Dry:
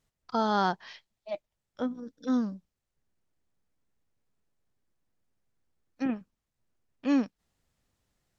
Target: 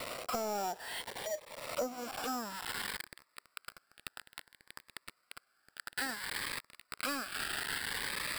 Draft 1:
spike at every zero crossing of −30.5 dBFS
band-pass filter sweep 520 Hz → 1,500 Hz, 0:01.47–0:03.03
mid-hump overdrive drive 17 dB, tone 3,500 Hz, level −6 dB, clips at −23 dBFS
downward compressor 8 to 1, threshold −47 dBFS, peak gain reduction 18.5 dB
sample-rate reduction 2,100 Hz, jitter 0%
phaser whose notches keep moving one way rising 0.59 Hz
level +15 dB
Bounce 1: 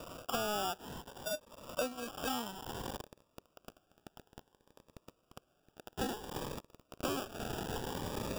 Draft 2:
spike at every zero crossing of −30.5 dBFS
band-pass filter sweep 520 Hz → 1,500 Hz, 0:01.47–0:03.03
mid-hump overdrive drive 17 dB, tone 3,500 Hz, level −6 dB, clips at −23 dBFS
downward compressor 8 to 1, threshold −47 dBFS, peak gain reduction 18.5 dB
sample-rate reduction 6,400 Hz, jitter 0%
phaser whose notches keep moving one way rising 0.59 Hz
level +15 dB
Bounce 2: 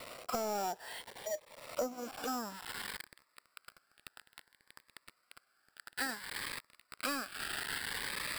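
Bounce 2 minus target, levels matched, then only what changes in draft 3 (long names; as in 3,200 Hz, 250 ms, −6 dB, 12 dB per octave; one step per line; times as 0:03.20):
spike at every zero crossing: distortion −7 dB
change: spike at every zero crossing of −23.5 dBFS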